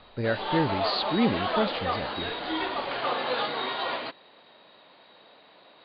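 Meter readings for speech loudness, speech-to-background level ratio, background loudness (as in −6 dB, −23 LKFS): −29.0 LKFS, 1.0 dB, −30.0 LKFS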